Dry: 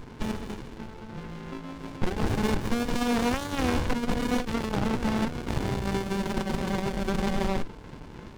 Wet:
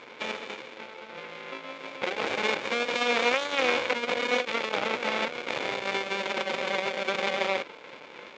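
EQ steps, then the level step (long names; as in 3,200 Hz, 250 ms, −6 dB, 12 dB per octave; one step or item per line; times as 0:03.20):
high-frequency loss of the air 200 metres
loudspeaker in its box 460–8,900 Hz, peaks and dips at 530 Hz +10 dB, 1,300 Hz +3 dB, 2,300 Hz +10 dB, 3,500 Hz +5 dB, 7,000 Hz +6 dB
high-shelf EQ 2,500 Hz +11.5 dB
0.0 dB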